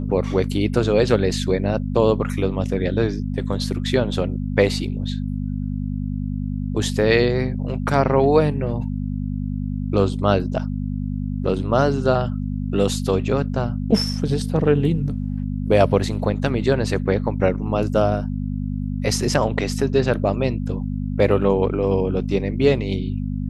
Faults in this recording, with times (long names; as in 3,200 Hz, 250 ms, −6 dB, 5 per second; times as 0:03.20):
mains hum 50 Hz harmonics 5 −25 dBFS